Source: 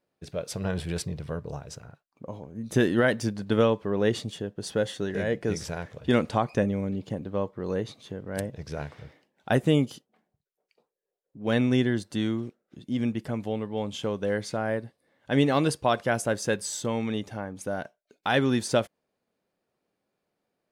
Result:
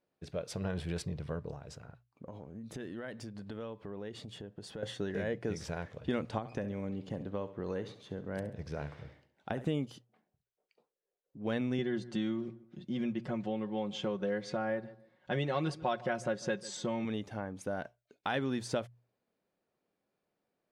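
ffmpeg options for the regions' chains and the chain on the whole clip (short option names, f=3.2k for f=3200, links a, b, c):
-filter_complex "[0:a]asettb=1/sr,asplit=3[a][b][c];[a]atrim=end=1.514[d];[b]atrim=start=1.51:end=4.83,asetpts=PTS-STARTPTS,afade=t=in:d=0.004:c=qsin,afade=t=out:st=3.316:d=0.004:c=qsin,bandreject=f=6k:w=15,acompressor=threshold=-38dB:ratio=4:attack=3.2:release=140:knee=1:detection=peak[e];[c]atrim=start=4.826[f];[d][e]acrossfade=d=0.004:c1=hsin:c2=qsin[g];[g][f]acrossfade=d=0.004:c1=qsin:c2=hsin,asettb=1/sr,asplit=3[h][i][j];[h]atrim=end=6.384[k];[i]atrim=start=6.38:end=9.65,asetpts=PTS-STARTPTS,afade=t=in:d=0.004:c=qsin,afade=t=out:st=3.266:d=0.004:c=qsin,acrossover=split=670|1900[l][m][n];[l]acompressor=threshold=-30dB:ratio=4[o];[m]acompressor=threshold=-38dB:ratio=4[p];[n]acompressor=threshold=-47dB:ratio=4[q];[o][p][q]amix=inputs=3:normalize=0,aecho=1:1:68|136|204|272:0.2|0.0858|0.0369|0.0159,atrim=end_sample=144207[r];[j]atrim=start=9.646[s];[k][r]acrossfade=d=0.004:c1=hsin:c2=qsin[t];[t][s]acrossfade=d=0.004:c1=qsin:c2=hsin,asettb=1/sr,asplit=3[u][v][w];[u]atrim=end=11.784[x];[v]atrim=start=11.78:end=17.05,asetpts=PTS-STARTPTS,afade=t=in:d=0.004:c=qsin,afade=t=out:st=5.266:d=0.004:c=qsin,lowpass=6.5k,aecho=1:1:5.5:0.76,atrim=end_sample=232407,asplit=2[y][z];[z]adelay=147,lowpass=f=1.6k:p=1,volume=-20.5dB,asplit=2[aa][ab];[ab]adelay=147,lowpass=f=1.6k:p=1,volume=0.25[ac];[y][aa][ac]amix=inputs=3:normalize=0,atrim=end_sample=232407[ad];[w]atrim=start=17.046[ae];[x][ad]acrossfade=d=0.004:c1=hsin:c2=qsin[af];[af][ae]acrossfade=d=0.004:c1=qsin:c2=hsin,highshelf=f=7.3k:g=-10.5,bandreject=f=60:t=h:w=6,bandreject=f=120:t=h:w=6,acompressor=threshold=-29dB:ratio=2.5,volume=-3.5dB"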